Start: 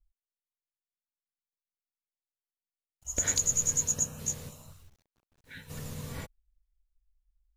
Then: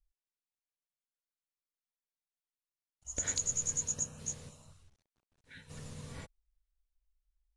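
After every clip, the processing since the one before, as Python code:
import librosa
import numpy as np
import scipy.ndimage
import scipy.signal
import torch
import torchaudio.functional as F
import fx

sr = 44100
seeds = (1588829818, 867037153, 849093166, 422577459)

y = scipy.signal.sosfilt(scipy.signal.ellip(4, 1.0, 70, 10000.0, 'lowpass', fs=sr, output='sos'), x)
y = F.gain(torch.from_numpy(y), -5.5).numpy()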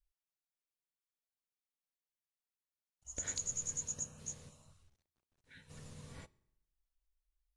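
y = fx.rev_fdn(x, sr, rt60_s=0.81, lf_ratio=1.1, hf_ratio=0.8, size_ms=16.0, drr_db=19.5)
y = F.gain(torch.from_numpy(y), -5.5).numpy()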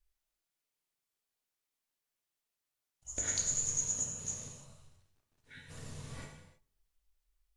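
y = fx.wow_flutter(x, sr, seeds[0], rate_hz=2.1, depth_cents=27.0)
y = fx.rev_gated(y, sr, seeds[1], gate_ms=350, shape='falling', drr_db=1.5)
y = F.gain(torch.from_numpy(y), 4.0).numpy()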